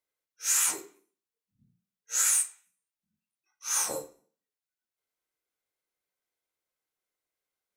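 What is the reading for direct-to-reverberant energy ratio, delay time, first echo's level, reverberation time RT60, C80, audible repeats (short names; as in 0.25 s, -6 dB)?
7.0 dB, none, none, 0.45 s, 19.0 dB, none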